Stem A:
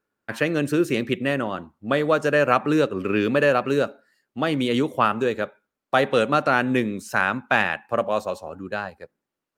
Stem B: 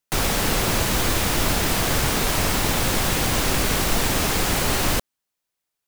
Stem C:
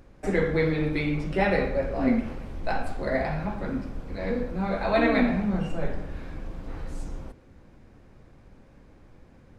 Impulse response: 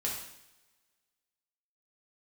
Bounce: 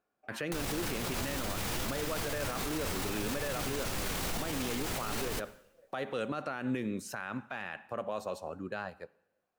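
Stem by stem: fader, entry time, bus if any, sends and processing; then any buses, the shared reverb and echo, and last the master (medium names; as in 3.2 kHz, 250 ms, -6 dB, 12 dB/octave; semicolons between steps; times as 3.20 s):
-6.0 dB, 0.00 s, send -22 dB, compression 2.5:1, threshold -22 dBFS, peak gain reduction 7 dB
+2.0 dB, 0.40 s, send -21 dB, peak limiter -19.5 dBFS, peak gain reduction 10.5 dB; flange 0.63 Hz, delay 6.6 ms, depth 5.7 ms, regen +69%
-16.0 dB, 0.00 s, no send, compression, threshold -31 dBFS, peak gain reduction 13 dB; stepped vowel filter 3.4 Hz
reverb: on, pre-delay 3 ms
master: peak limiter -25.5 dBFS, peak gain reduction 12 dB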